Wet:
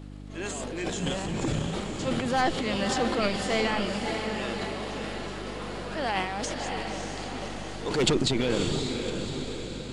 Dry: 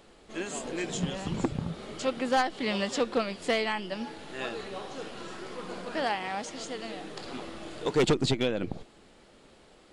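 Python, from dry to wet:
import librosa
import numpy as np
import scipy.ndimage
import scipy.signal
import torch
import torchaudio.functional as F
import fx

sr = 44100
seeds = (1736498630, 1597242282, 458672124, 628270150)

y = fx.transient(x, sr, attack_db=-4, sustain_db=11)
y = fx.echo_diffused(y, sr, ms=580, feedback_pct=57, wet_db=-5.5)
y = fx.dmg_buzz(y, sr, base_hz=50.0, harmonics=6, level_db=-42.0, tilt_db=-3, odd_only=False)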